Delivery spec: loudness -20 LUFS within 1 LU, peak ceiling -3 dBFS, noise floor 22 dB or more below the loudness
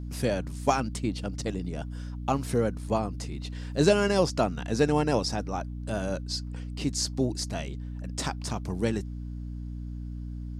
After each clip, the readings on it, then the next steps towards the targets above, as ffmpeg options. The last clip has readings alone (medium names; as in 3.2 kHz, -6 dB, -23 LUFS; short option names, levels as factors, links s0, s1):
hum 60 Hz; highest harmonic 300 Hz; hum level -34 dBFS; loudness -29.5 LUFS; peak level -9.5 dBFS; loudness target -20.0 LUFS
-> -af "bandreject=f=60:t=h:w=4,bandreject=f=120:t=h:w=4,bandreject=f=180:t=h:w=4,bandreject=f=240:t=h:w=4,bandreject=f=300:t=h:w=4"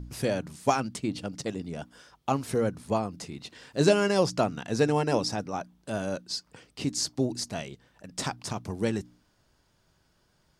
hum not found; loudness -29.5 LUFS; peak level -9.5 dBFS; loudness target -20.0 LUFS
-> -af "volume=2.99,alimiter=limit=0.708:level=0:latency=1"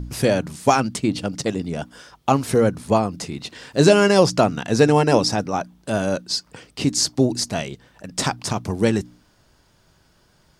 loudness -20.5 LUFS; peak level -3.0 dBFS; noise floor -59 dBFS